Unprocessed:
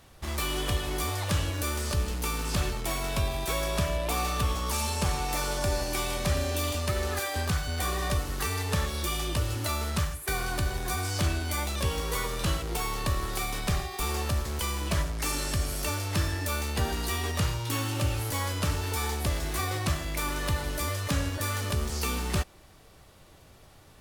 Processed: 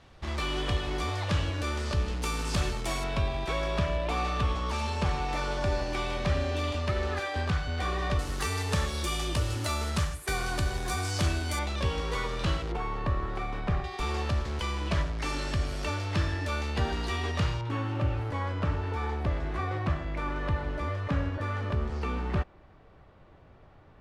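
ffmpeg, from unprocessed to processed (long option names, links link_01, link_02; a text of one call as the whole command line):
ffmpeg -i in.wav -af "asetnsamples=nb_out_samples=441:pad=0,asendcmd='2.23 lowpass f 8000;3.04 lowpass f 3500;8.19 lowpass f 8800;11.59 lowpass f 4200;12.72 lowpass f 1800;13.84 lowpass f 4000;17.61 lowpass f 1800',lowpass=4400" out.wav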